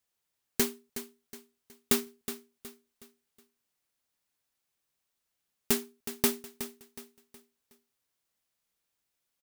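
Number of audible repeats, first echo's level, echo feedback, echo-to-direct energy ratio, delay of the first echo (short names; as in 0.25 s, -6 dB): 3, -12.0 dB, 37%, -11.5 dB, 0.368 s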